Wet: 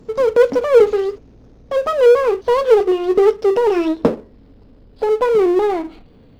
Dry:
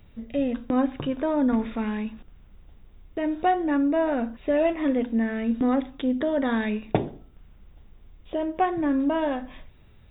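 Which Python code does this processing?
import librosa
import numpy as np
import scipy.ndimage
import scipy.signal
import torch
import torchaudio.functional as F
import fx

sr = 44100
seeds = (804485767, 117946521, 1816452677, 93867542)

y = fx.speed_glide(x, sr, from_pct=195, to_pct=121)
y = fx.small_body(y, sr, hz=(260.0, 440.0), ring_ms=25, db=15)
y = fx.power_curve(y, sr, exponent=0.7)
y = fx.upward_expand(y, sr, threshold_db=-26.0, expansion=1.5)
y = F.gain(torch.from_numpy(y), -2.0).numpy()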